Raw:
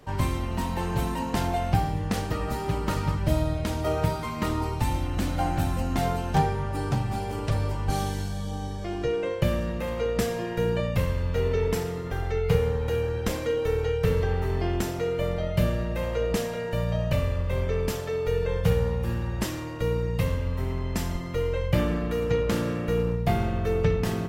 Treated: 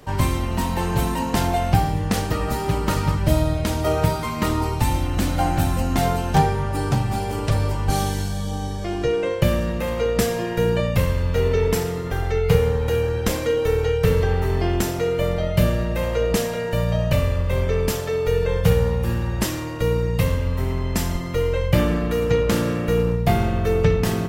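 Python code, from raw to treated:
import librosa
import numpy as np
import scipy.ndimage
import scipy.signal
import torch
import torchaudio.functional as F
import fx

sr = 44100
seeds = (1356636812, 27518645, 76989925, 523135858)

y = fx.high_shelf(x, sr, hz=5700.0, db=4.5)
y = F.gain(torch.from_numpy(y), 5.5).numpy()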